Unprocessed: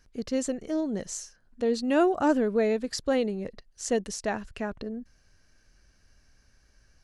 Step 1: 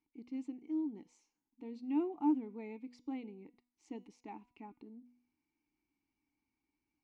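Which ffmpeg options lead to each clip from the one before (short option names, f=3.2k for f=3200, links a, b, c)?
-filter_complex "[0:a]asplit=3[a][b][c];[a]bandpass=f=300:t=q:w=8,volume=0dB[d];[b]bandpass=f=870:t=q:w=8,volume=-6dB[e];[c]bandpass=f=2.24k:t=q:w=8,volume=-9dB[f];[d][e][f]amix=inputs=3:normalize=0,bandreject=f=244.3:t=h:w=4,bandreject=f=488.6:t=h:w=4,bandreject=f=732.9:t=h:w=4,bandreject=f=977.2:t=h:w=4,bandreject=f=1.2215k:t=h:w=4,bandreject=f=1.4658k:t=h:w=4,bandreject=f=1.7101k:t=h:w=4,bandreject=f=1.9544k:t=h:w=4,bandreject=f=2.1987k:t=h:w=4,bandreject=f=2.443k:t=h:w=4,bandreject=f=2.6873k:t=h:w=4,bandreject=f=2.9316k:t=h:w=4,bandreject=f=3.1759k:t=h:w=4,bandreject=f=3.4202k:t=h:w=4,bandreject=f=3.6645k:t=h:w=4,bandreject=f=3.9088k:t=h:w=4,bandreject=f=4.1531k:t=h:w=4,bandreject=f=4.3974k:t=h:w=4,bandreject=f=4.6417k:t=h:w=4,bandreject=f=4.886k:t=h:w=4,bandreject=f=5.1303k:t=h:w=4,bandreject=f=5.3746k:t=h:w=4,bandreject=f=5.6189k:t=h:w=4,bandreject=f=5.8632k:t=h:w=4,bandreject=f=6.1075k:t=h:w=4,bandreject=f=6.3518k:t=h:w=4,bandreject=f=6.5961k:t=h:w=4,bandreject=f=6.8404k:t=h:w=4,bandreject=f=7.0847k:t=h:w=4,volume=-4dB"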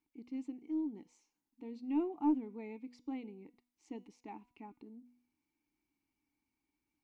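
-af "aeval=exprs='0.0794*(cos(1*acos(clip(val(0)/0.0794,-1,1)))-cos(1*PI/2))+0.00355*(cos(2*acos(clip(val(0)/0.0794,-1,1)))-cos(2*PI/2))':c=same"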